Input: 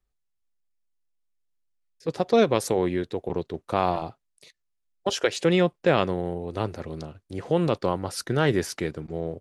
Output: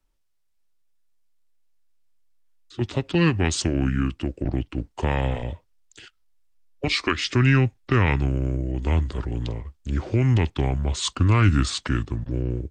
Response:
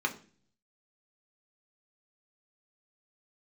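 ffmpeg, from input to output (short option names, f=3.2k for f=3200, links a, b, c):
-filter_complex "[0:a]asubboost=boost=3:cutoff=130,acrossover=split=340|1500[a][b][c];[b]acompressor=threshold=-38dB:ratio=6[d];[a][d][c]amix=inputs=3:normalize=0,asetrate=32667,aresample=44100,volume=6dB"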